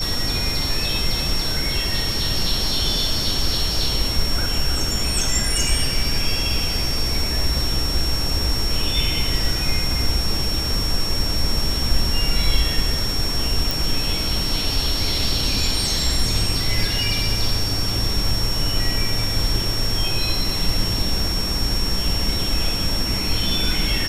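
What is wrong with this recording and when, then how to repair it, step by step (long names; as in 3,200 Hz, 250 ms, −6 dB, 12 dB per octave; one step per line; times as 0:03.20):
whistle 5,500 Hz −24 dBFS
0:13.71: click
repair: click removal
notch filter 5,500 Hz, Q 30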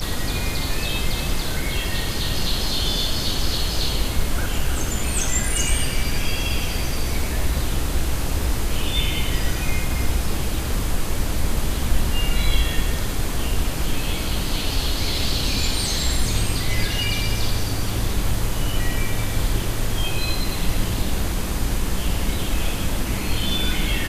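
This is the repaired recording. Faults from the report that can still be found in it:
none of them is left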